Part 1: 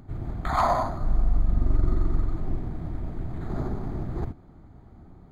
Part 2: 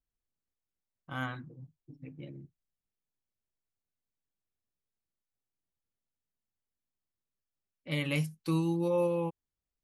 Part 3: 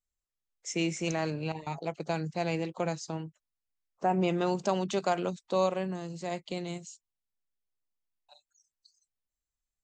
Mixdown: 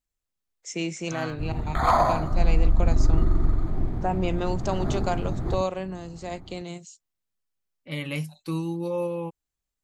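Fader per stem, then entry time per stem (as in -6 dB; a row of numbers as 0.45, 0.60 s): +2.5, +0.5, +0.5 dB; 1.30, 0.00, 0.00 s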